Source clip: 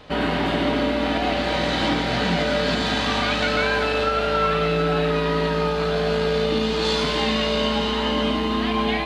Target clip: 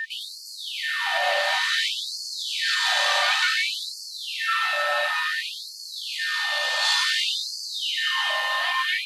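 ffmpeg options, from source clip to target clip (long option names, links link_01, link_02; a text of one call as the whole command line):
ffmpeg -i in.wav -af "aemphasis=mode=production:type=50fm,aeval=exprs='val(0)+0.0501*sin(2*PI*1800*n/s)':channel_layout=same,afftfilt=real='re*gte(b*sr/1024,500*pow(4300/500,0.5+0.5*sin(2*PI*0.56*pts/sr)))':imag='im*gte(b*sr/1024,500*pow(4300/500,0.5+0.5*sin(2*PI*0.56*pts/sr)))':win_size=1024:overlap=0.75" out.wav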